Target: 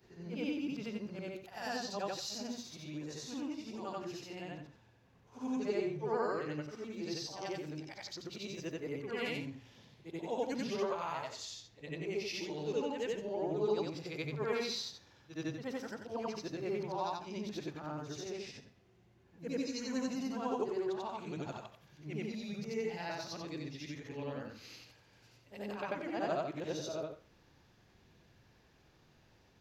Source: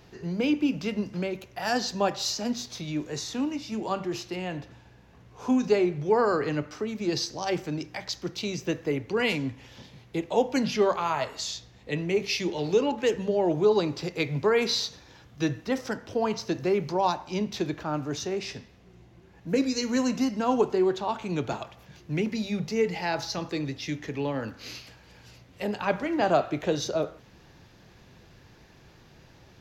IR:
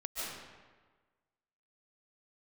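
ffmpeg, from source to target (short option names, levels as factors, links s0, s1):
-af "afftfilt=real='re':imag='-im':win_size=8192:overlap=0.75,bandreject=f=60:t=h:w=6,bandreject=f=120:t=h:w=6,bandreject=f=180:t=h:w=6,volume=0.447"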